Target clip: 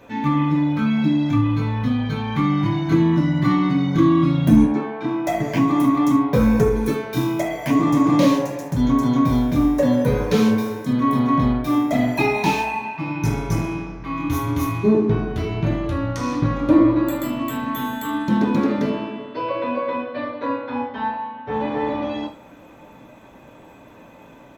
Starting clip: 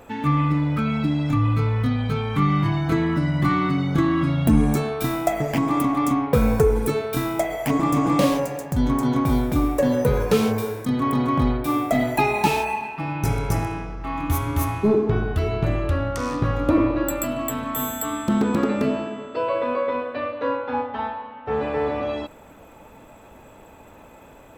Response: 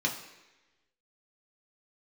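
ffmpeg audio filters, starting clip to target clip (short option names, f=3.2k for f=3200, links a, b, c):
-filter_complex "[0:a]asettb=1/sr,asplit=3[a][b][c];[a]atrim=end=4.644[d];[b]atrim=start=4.64:end=5.27,asetpts=PTS-STARTPTS,afade=t=in:d=0.004:c=qsin,afade=t=out:st=0.626:d=0.004:c=qsin,highpass=240,lowpass=2.1k[e];[c]atrim=start=5.266[f];[d][e]acrossfade=d=0.004:c1=hsin:c2=qsin[g];[g][f]acrossfade=d=0.004:c1=qsin:c2=hsin,aecho=1:1:78:0.168[h];[1:a]atrim=start_sample=2205,atrim=end_sample=3528[i];[h][i]afir=irnorm=-1:irlink=0,volume=-6dB"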